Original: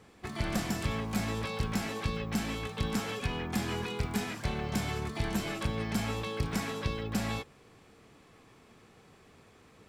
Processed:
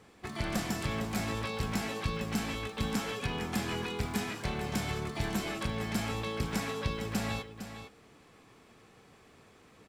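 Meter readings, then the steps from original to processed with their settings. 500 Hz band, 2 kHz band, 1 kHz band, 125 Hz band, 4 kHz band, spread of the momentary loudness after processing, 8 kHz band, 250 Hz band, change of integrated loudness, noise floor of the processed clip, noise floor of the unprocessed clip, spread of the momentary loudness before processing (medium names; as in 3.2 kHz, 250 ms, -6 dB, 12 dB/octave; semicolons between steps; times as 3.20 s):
0.0 dB, +0.5 dB, 0.0 dB, -1.5 dB, +0.5 dB, 3 LU, +0.5 dB, -1.0 dB, -0.5 dB, -59 dBFS, -59 dBFS, 2 LU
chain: bass shelf 180 Hz -3 dB; delay 456 ms -10.5 dB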